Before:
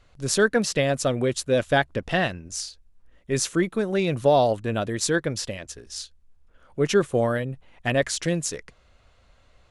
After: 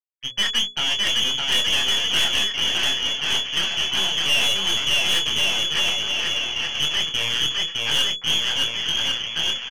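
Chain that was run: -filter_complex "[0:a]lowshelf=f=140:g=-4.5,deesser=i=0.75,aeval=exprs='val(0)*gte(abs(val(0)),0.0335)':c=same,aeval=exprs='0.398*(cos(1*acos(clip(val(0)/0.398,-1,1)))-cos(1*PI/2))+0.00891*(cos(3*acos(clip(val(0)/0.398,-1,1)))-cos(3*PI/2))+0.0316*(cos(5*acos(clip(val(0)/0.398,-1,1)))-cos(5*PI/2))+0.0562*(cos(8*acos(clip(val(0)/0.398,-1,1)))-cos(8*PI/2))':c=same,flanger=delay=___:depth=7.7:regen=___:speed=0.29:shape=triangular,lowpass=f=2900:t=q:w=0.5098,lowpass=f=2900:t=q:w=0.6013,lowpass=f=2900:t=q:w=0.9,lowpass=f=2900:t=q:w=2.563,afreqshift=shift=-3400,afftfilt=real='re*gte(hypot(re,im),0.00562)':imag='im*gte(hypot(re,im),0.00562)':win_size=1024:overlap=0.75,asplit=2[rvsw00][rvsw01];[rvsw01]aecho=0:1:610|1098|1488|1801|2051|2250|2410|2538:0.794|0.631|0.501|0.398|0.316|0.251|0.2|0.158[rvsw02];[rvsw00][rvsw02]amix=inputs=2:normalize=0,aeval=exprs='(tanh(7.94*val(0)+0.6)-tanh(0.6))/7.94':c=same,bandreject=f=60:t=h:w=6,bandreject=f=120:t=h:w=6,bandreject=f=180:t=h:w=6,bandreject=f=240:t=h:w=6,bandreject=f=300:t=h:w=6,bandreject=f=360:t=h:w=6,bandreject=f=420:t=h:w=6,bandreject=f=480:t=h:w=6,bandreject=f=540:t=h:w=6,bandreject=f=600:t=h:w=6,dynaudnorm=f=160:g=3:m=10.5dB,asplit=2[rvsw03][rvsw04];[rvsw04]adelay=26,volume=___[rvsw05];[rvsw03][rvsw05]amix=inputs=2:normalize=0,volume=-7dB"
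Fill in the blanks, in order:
6.1, -16, -8dB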